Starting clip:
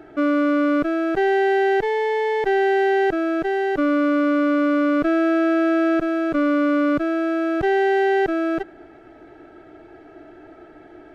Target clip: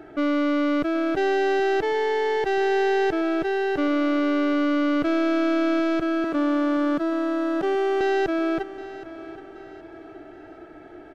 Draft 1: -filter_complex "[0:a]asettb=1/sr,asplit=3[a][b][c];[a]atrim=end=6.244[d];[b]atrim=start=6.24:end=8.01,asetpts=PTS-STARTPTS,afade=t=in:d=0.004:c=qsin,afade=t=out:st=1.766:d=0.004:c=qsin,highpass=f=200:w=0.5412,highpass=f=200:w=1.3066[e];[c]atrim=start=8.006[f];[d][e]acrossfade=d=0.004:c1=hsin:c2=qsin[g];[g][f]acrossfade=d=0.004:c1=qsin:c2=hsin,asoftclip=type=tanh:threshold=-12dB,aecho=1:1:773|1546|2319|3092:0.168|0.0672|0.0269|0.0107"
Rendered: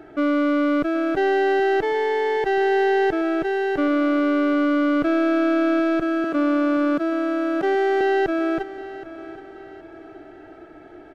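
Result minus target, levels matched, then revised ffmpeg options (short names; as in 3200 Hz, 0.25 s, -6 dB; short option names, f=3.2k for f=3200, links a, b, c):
soft clip: distortion -9 dB
-filter_complex "[0:a]asettb=1/sr,asplit=3[a][b][c];[a]atrim=end=6.244[d];[b]atrim=start=6.24:end=8.01,asetpts=PTS-STARTPTS,afade=t=in:d=0.004:c=qsin,afade=t=out:st=1.766:d=0.004:c=qsin,highpass=f=200:w=0.5412,highpass=f=200:w=1.3066[e];[c]atrim=start=8.006[f];[d][e]acrossfade=d=0.004:c1=hsin:c2=qsin[g];[g][f]acrossfade=d=0.004:c1=qsin:c2=hsin,asoftclip=type=tanh:threshold=-18.5dB,aecho=1:1:773|1546|2319|3092:0.168|0.0672|0.0269|0.0107"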